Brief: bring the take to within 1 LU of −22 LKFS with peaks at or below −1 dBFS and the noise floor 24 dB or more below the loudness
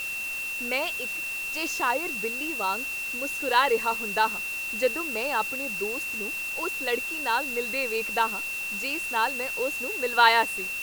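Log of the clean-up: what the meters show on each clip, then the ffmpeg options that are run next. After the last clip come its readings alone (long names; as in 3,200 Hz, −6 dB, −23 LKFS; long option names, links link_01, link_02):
interfering tone 2,700 Hz; level of the tone −30 dBFS; background noise floor −33 dBFS; target noise floor −50 dBFS; integrated loudness −26.0 LKFS; sample peak −4.5 dBFS; target loudness −22.0 LKFS
→ -af "bandreject=frequency=2700:width=30"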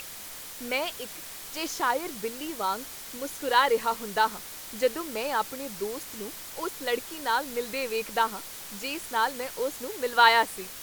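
interfering tone none found; background noise floor −42 dBFS; target noise floor −53 dBFS
→ -af "afftdn=noise_reduction=11:noise_floor=-42"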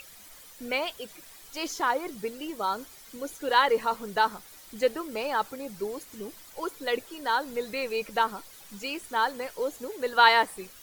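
background noise floor −50 dBFS; target noise floor −52 dBFS
→ -af "afftdn=noise_reduction=6:noise_floor=-50"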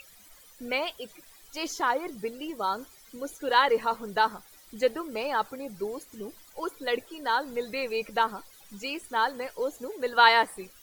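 background noise floor −54 dBFS; integrated loudness −28.0 LKFS; sample peak −5.5 dBFS; target loudness −22.0 LKFS
→ -af "volume=6dB,alimiter=limit=-1dB:level=0:latency=1"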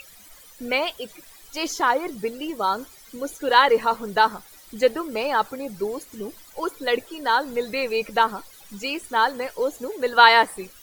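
integrated loudness −22.5 LKFS; sample peak −1.0 dBFS; background noise floor −48 dBFS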